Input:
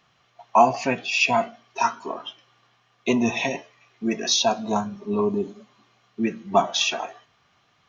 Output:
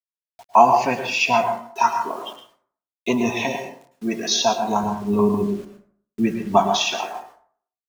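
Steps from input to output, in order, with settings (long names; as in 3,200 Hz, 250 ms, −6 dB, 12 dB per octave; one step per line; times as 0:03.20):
dynamic equaliser 890 Hz, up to +5 dB, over −35 dBFS, Q 2.5
bit reduction 8 bits
0:04.83–0:06.57: low-shelf EQ 170 Hz +12 dB
dense smooth reverb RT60 0.53 s, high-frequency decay 0.5×, pre-delay 95 ms, DRR 6 dB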